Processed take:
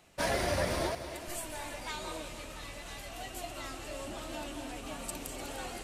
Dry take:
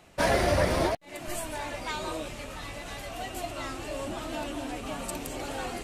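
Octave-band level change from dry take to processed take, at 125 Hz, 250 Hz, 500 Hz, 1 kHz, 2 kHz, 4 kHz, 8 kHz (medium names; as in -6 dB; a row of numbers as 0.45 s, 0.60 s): -7.0 dB, -7.0 dB, -7.0 dB, -6.5 dB, -5.5 dB, -3.5 dB, -2.0 dB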